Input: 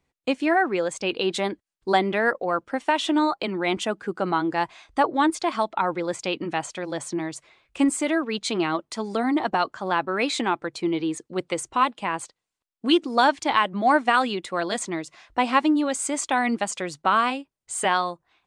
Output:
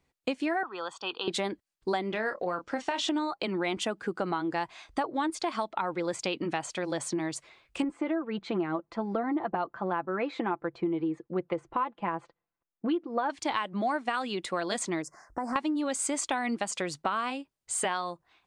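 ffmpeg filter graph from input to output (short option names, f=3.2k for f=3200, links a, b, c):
-filter_complex "[0:a]asettb=1/sr,asplit=3[a][b][c];[a]atrim=end=0.634[d];[b]atrim=start=0.63:end=1.28,asetpts=PTS-STARTPTS,afade=t=in:d=0.004:c=qsin,afade=t=out:st=0.646:d=0.004:c=qsin,asuperstop=centerf=2200:order=4:qfactor=2.5,acrossover=split=520 4000:gain=0.0708 1 0.0708[e][f][g];[e][f][g]amix=inputs=3:normalize=0,aecho=1:1:0.9:0.69,atrim=end_sample=28665[h];[c]atrim=start=1.276[i];[d][h]acrossfade=d=0.004:c1=hsin:c2=qsin[j];[j][i]acrossfade=d=0.004:c1=qsin:c2=hsin,asettb=1/sr,asplit=3[k][l][m];[k]atrim=end=2.104[n];[l]atrim=start=2.1:end=3.09,asetpts=PTS-STARTPTS,afade=t=in:d=0.004:c=qsin,afade=t=out:st=0.986:d=0.004:c=qsin,acompressor=threshold=-28dB:ratio=1.5:attack=3.2:release=140:knee=1:detection=peak,lowpass=f=6.5k:t=q:w=1.7,asplit=2[o][p];[p]adelay=28,volume=-9dB[q];[o][q]amix=inputs=2:normalize=0,atrim=end_sample=43659[r];[m]atrim=start=3.086[s];[n][r]acrossfade=d=0.004:c1=hsin:c2=qsin[t];[t][s]acrossfade=d=0.004:c1=qsin:c2=hsin,asettb=1/sr,asplit=3[u][v][w];[u]atrim=end=7.824[x];[v]atrim=start=7.82:end=13.3,asetpts=PTS-STARTPTS,afade=t=in:d=0.004:c=qsin,afade=t=out:st=5.476:d=0.004:c=qsin,lowpass=1.5k,aecho=1:1:5.9:0.42,atrim=end_sample=241668[y];[w]atrim=start=13.296[z];[x][y]acrossfade=d=0.004:c1=hsin:c2=qsin[aa];[aa][z]acrossfade=d=0.004:c1=qsin:c2=hsin,asettb=1/sr,asplit=3[ab][ac][ad];[ab]atrim=end=15.024[ae];[ac]atrim=start=15.02:end=15.56,asetpts=PTS-STARTPTS,afade=t=in:d=0.004:c=qsin,afade=t=out:st=0.536:d=0.004:c=qsin,asuperstop=centerf=3100:order=8:qfactor=0.86,acompressor=threshold=-29dB:ratio=4:attack=3.2:release=140:knee=1:detection=peak[af];[ad]atrim=start=15.556[ag];[ae][af]acrossfade=d=0.004:c1=hsin:c2=qsin[ah];[ah][ag]acrossfade=d=0.004:c1=qsin:c2=hsin,equalizer=f=4.6k:w=5.6:g=2,acompressor=threshold=-27dB:ratio=6"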